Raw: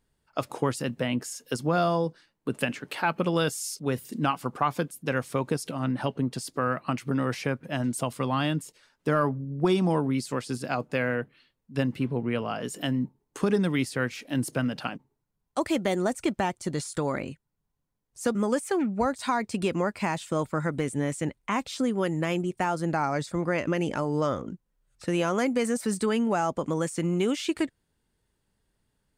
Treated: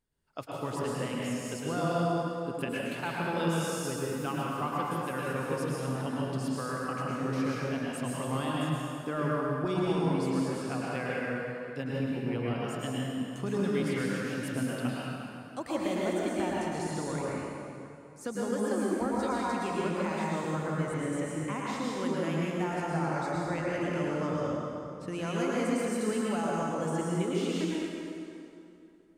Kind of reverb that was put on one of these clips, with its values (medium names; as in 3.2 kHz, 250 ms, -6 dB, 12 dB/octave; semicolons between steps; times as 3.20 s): plate-style reverb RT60 2.7 s, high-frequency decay 0.75×, pre-delay 95 ms, DRR -5.5 dB; trim -10.5 dB